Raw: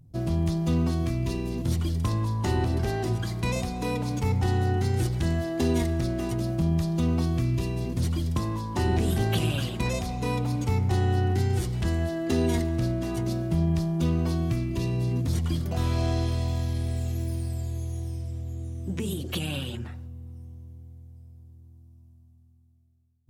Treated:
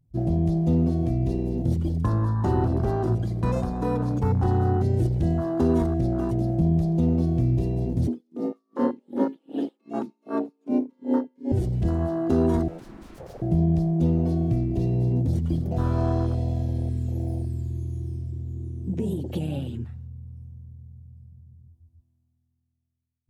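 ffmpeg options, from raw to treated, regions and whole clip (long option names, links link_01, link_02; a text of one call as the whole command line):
ffmpeg -i in.wav -filter_complex "[0:a]asettb=1/sr,asplit=3[link_01][link_02][link_03];[link_01]atrim=end=8.074[link_04];[link_02]atrim=start=8.07:end=11.52,asetpts=PTS-STARTPTS,afade=type=in:duration=0.004:curve=qsin,afade=type=out:start_time=3.446:duration=0.004:curve=qsin,acrossover=split=3700[link_05][link_06];[link_06]acompressor=threshold=-48dB:ratio=4:attack=1:release=60[link_07];[link_05][link_07]amix=inputs=2:normalize=0,afreqshift=160,aeval=exprs='val(0)*pow(10,-32*(0.5-0.5*cos(2*PI*2.6*n/s))/20)':channel_layout=same[link_08];[link_03]atrim=start=11.516[link_09];[link_04][link_08]acrossfade=duration=0.004:curve1=hsin:curve2=qsin[link_10];[link_10][link_09]acrossfade=duration=0.004:curve1=qsin:curve2=hsin,asettb=1/sr,asplit=3[link_11][link_12][link_13];[link_11]atrim=end=12.684[link_14];[link_12]atrim=start=12.68:end=13.42,asetpts=PTS-STARTPTS,afade=type=in:duration=0.004:curve=qsin,afade=type=out:start_time=0.736:duration=0.004:curve=qsin,equalizer=frequency=170:width_type=o:width=0.93:gain=-8.5,aeval=exprs='0.0188*(abs(mod(val(0)/0.0188+3,4)-2)-1)':channel_layout=same[link_15];[link_13]atrim=start=13.416[link_16];[link_14][link_15]acrossfade=duration=0.004:curve1=hsin:curve2=qsin[link_17];[link_17][link_16]acrossfade=duration=0.004:curve1=qsin:curve2=hsin,afwtdn=0.0282,equalizer=frequency=85:width=5.2:gain=-4,volume=4dB" out.wav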